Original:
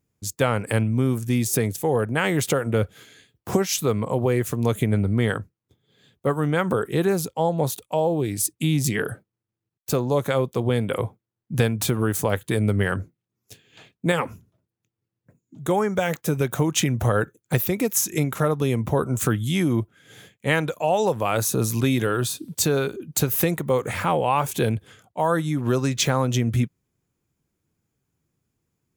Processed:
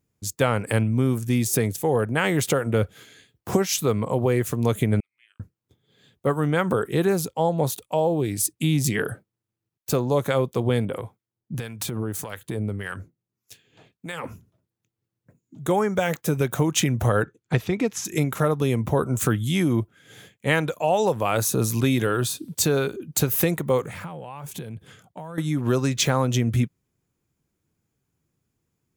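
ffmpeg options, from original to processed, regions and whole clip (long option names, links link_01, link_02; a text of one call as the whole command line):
ffmpeg -i in.wav -filter_complex "[0:a]asettb=1/sr,asplit=3[link_01][link_02][link_03];[link_01]atrim=end=5.004[link_04];[link_02]atrim=start=5:end=5.4,asetpts=PTS-STARTPTS,afade=type=in:duration=0.004:curve=qsin,afade=type=out:start_time=0.396:duration=0.004:curve=qsin,bandpass=frequency=2600:width_type=q:width=20,aderivative,afreqshift=-96[link_05];[link_03]atrim=start=5.396[link_06];[link_04][link_05]acrossfade=duration=0.004:curve1=hsin:curve2=qsin[link_07];[link_07][link_06]acrossfade=duration=0.004:curve1=qsin:curve2=hsin,asettb=1/sr,asplit=3[link_08][link_09][link_10];[link_08]atrim=end=10.854[link_11];[link_09]atrim=start=10.85:end=14.24,asetpts=PTS-STARTPTS,afade=type=in:duration=0.004:curve=qsin,afade=type=out:start_time=3.386:duration=0.004:curve=qsin,acompressor=threshold=-22dB:ratio=6:attack=3.2:release=140:knee=1:detection=peak,acrossover=split=1000[link_12][link_13];[link_12]aeval=exprs='val(0)*(1-0.7/2+0.7/2*cos(2*PI*1.7*n/s))':channel_layout=same[link_14];[link_13]aeval=exprs='val(0)*(1-0.7/2-0.7/2*cos(2*PI*1.7*n/s))':channel_layout=same[link_15];[link_14][link_15]amix=inputs=2:normalize=0[link_16];[link_10]atrim=start=14.236[link_17];[link_11][link_16]acrossfade=duration=0.004:curve1=hsin:curve2=qsin[link_18];[link_18][link_17]acrossfade=duration=0.004:curve1=qsin:curve2=hsin,asettb=1/sr,asplit=3[link_19][link_20][link_21];[link_19]atrim=end=17.234[link_22];[link_20]atrim=start=17.23:end=18.05,asetpts=PTS-STARTPTS,afade=type=in:duration=0.004:curve=qsin,afade=type=out:start_time=0.816:duration=0.004:curve=qsin,lowpass=4700,bandreject=frequency=550:width=8.6[link_23];[link_21]atrim=start=18.046[link_24];[link_22][link_23]acrossfade=duration=0.004:curve1=hsin:curve2=qsin[link_25];[link_25][link_24]acrossfade=duration=0.004:curve1=qsin:curve2=hsin,asettb=1/sr,asplit=3[link_26][link_27][link_28];[link_26]atrim=end=23.834[link_29];[link_27]atrim=start=23.83:end=25.38,asetpts=PTS-STARTPTS,afade=type=in:duration=0.004:curve=qsin,afade=type=out:start_time=1.546:duration=0.004:curve=qsin,acompressor=threshold=-33dB:ratio=16:attack=3.2:release=140:knee=1:detection=peak,equalizer=frequency=160:width_type=o:width=0.56:gain=9[link_30];[link_28]atrim=start=25.376[link_31];[link_29][link_30]acrossfade=duration=0.004:curve1=hsin:curve2=qsin[link_32];[link_32][link_31]acrossfade=duration=0.004:curve1=qsin:curve2=hsin" out.wav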